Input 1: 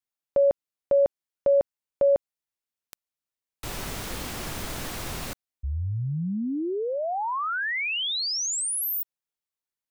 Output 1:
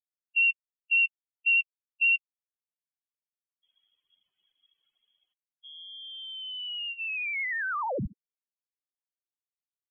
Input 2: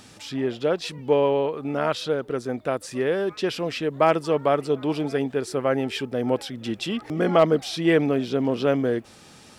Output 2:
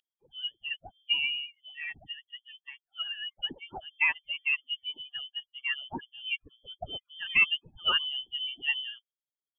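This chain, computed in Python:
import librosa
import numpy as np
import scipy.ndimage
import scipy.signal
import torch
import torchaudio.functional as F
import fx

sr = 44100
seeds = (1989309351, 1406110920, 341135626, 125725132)

y = fx.bin_expand(x, sr, power=3.0)
y = fx.highpass(y, sr, hz=520.0, slope=6)
y = fx.wow_flutter(y, sr, seeds[0], rate_hz=11.0, depth_cents=74.0)
y = fx.freq_invert(y, sr, carrier_hz=3300)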